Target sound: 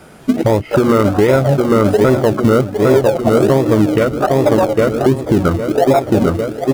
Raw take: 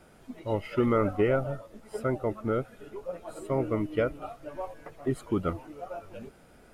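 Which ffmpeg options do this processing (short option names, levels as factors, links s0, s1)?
-filter_complex "[0:a]bandreject=f=60:t=h:w=6,bandreject=f=120:t=h:w=6,bandreject=f=180:t=h:w=6,bandreject=f=240:t=h:w=6,bandreject=f=300:t=h:w=6,bandreject=f=360:t=h:w=6,afwtdn=0.0178,asplit=2[s0][s1];[s1]adelay=803,lowpass=f=2000:p=1,volume=0.2,asplit=2[s2][s3];[s3]adelay=803,lowpass=f=2000:p=1,volume=0.54,asplit=2[s4][s5];[s5]adelay=803,lowpass=f=2000:p=1,volume=0.54,asplit=2[s6][s7];[s7]adelay=803,lowpass=f=2000:p=1,volume=0.54,asplit=2[s8][s9];[s9]adelay=803,lowpass=f=2000:p=1,volume=0.54[s10];[s2][s4][s6][s8][s10]amix=inputs=5:normalize=0[s11];[s0][s11]amix=inputs=2:normalize=0,acompressor=threshold=0.0112:ratio=16,highpass=76,asplit=2[s12][s13];[s13]acrusher=samples=42:mix=1:aa=0.000001:lfo=1:lforange=25.2:lforate=1.3,volume=0.282[s14];[s12][s14]amix=inputs=2:normalize=0,alimiter=level_in=47.3:limit=0.891:release=50:level=0:latency=1,volume=0.891"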